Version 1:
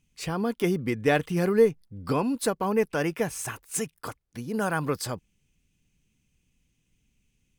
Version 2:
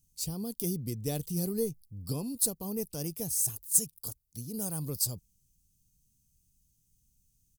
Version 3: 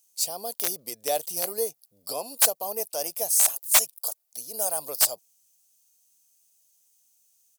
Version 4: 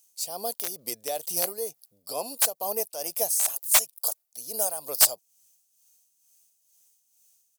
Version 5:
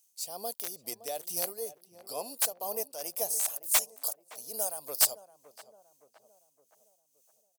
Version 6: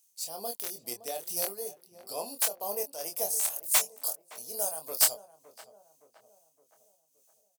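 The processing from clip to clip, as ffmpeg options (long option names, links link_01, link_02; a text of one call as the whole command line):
ffmpeg -i in.wav -af "firequalizer=gain_entry='entry(110,0);entry(250,-9);entry(1600,-29);entry(4400,1);entry(13000,14)':delay=0.05:min_phase=1,volume=-1dB" out.wav
ffmpeg -i in.wav -af "aeval=exprs='(mod(8.41*val(0)+1,2)-1)/8.41':channel_layout=same,highpass=frequency=650:width_type=q:width=4.9,tiltshelf=frequency=940:gain=-3.5,volume=6dB" out.wav
ffmpeg -i in.wav -af "tremolo=f=2.2:d=0.63,volume=3dB" out.wav
ffmpeg -i in.wav -filter_complex "[0:a]asplit=2[link_01][link_02];[link_02]adelay=566,lowpass=frequency=1300:poles=1,volume=-14.5dB,asplit=2[link_03][link_04];[link_04]adelay=566,lowpass=frequency=1300:poles=1,volume=0.54,asplit=2[link_05][link_06];[link_06]adelay=566,lowpass=frequency=1300:poles=1,volume=0.54,asplit=2[link_07][link_08];[link_08]adelay=566,lowpass=frequency=1300:poles=1,volume=0.54,asplit=2[link_09][link_10];[link_10]adelay=566,lowpass=frequency=1300:poles=1,volume=0.54[link_11];[link_01][link_03][link_05][link_07][link_09][link_11]amix=inputs=6:normalize=0,volume=-5.5dB" out.wav
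ffmpeg -i in.wav -filter_complex "[0:a]asplit=2[link_01][link_02];[link_02]adelay=25,volume=-5.5dB[link_03];[link_01][link_03]amix=inputs=2:normalize=0" out.wav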